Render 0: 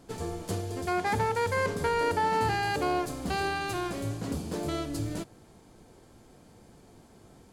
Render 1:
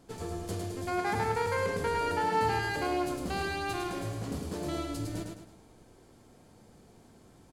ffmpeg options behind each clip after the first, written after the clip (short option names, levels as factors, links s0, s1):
-af "aecho=1:1:106|212|318|424|530:0.631|0.246|0.096|0.0374|0.0146,volume=0.631"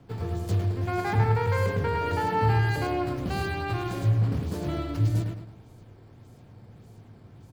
-filter_complex "[0:a]equalizer=f=110:w=1.6:g=15,acrossover=split=310|470|4500[s0][s1][s2][s3];[s3]acrusher=samples=8:mix=1:aa=0.000001:lfo=1:lforange=12.8:lforate=1.7[s4];[s0][s1][s2][s4]amix=inputs=4:normalize=0,volume=1.19"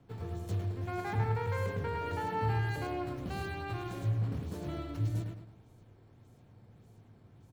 -af "bandreject=f=4800:w=13,volume=0.376"